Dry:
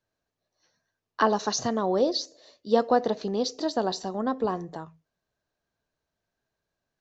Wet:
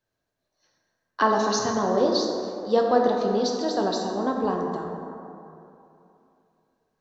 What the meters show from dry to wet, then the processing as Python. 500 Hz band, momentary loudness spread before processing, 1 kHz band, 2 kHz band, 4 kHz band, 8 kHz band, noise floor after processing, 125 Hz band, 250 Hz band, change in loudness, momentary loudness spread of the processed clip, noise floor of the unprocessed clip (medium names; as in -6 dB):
+3.5 dB, 16 LU, +3.5 dB, +3.5 dB, +1.5 dB, no reading, -81 dBFS, +3.0 dB, +3.0 dB, +2.5 dB, 13 LU, -85 dBFS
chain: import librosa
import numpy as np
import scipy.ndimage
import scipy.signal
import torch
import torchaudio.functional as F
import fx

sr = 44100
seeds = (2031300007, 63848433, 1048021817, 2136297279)

y = fx.rev_plate(x, sr, seeds[0], rt60_s=2.8, hf_ratio=0.4, predelay_ms=0, drr_db=0.5)